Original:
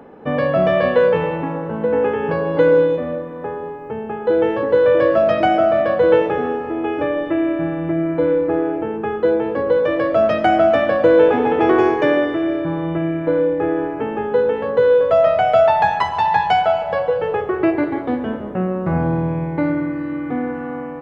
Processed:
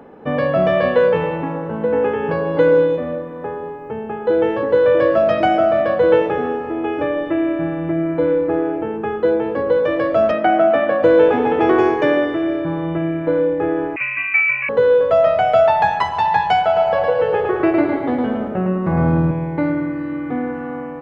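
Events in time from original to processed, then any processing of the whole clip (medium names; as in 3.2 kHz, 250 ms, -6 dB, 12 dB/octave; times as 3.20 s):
10.31–11.03 s: band-pass 180–2700 Hz
13.96–14.69 s: frequency inversion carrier 2.8 kHz
16.65–19.31 s: feedback delay 109 ms, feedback 41%, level -3 dB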